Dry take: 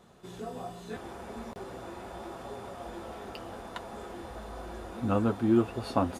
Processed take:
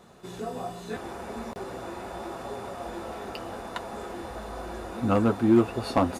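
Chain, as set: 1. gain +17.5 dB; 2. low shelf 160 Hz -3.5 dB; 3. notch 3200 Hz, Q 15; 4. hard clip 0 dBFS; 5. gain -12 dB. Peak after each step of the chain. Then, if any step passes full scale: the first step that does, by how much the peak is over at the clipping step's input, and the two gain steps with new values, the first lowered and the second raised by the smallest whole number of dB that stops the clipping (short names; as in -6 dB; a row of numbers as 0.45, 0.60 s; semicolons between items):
+8.0, +7.5, +7.5, 0.0, -12.0 dBFS; step 1, 7.5 dB; step 1 +9.5 dB, step 5 -4 dB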